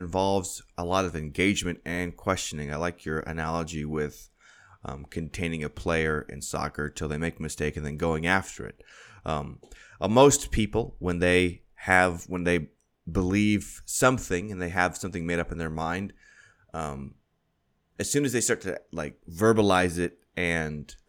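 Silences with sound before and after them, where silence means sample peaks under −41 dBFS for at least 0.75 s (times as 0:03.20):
0:17.12–0:17.99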